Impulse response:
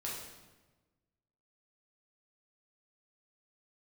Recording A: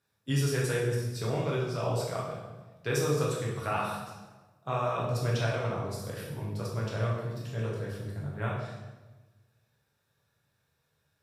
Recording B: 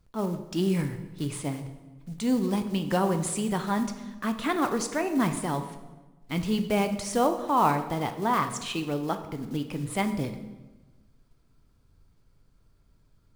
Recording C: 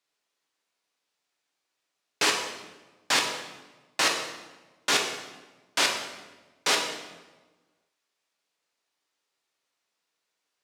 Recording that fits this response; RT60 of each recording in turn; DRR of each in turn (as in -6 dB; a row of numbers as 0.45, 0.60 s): A; 1.2, 1.2, 1.2 s; -5.0, 7.0, 1.0 dB